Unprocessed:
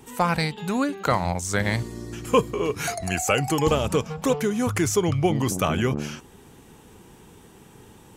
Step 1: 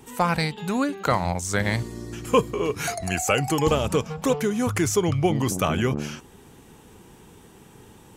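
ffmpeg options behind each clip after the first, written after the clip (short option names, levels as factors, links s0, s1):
-af anull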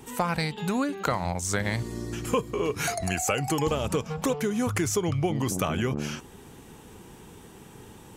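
-af "acompressor=threshold=0.0501:ratio=3,volume=1.19"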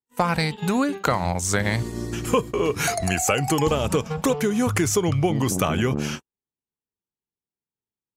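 -af "agate=range=0.00141:threshold=0.02:ratio=16:detection=peak,volume=1.78"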